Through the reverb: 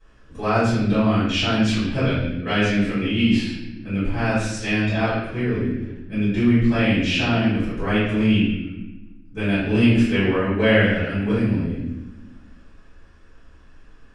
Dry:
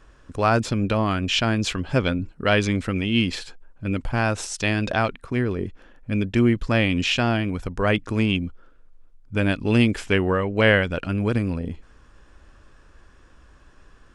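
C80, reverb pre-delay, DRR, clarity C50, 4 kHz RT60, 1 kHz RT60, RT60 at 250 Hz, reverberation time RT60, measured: 3.0 dB, 3 ms, -16.0 dB, -1.0 dB, 0.85 s, 0.85 s, 1.8 s, 1.0 s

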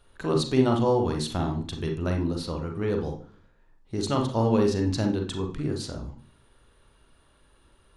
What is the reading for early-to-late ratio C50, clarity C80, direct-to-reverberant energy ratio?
6.5 dB, 13.5 dB, 2.0 dB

